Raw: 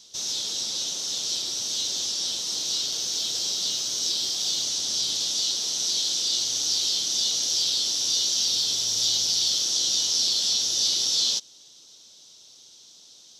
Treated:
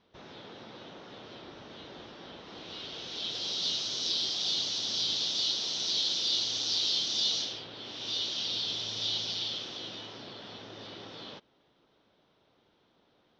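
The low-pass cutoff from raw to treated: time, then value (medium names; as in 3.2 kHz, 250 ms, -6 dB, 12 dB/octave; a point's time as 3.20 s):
low-pass 24 dB/octave
2.35 s 2 kHz
3.66 s 4.3 kHz
7.40 s 4.3 kHz
7.68 s 1.9 kHz
8.12 s 3.4 kHz
9.29 s 3.4 kHz
10.26 s 2 kHz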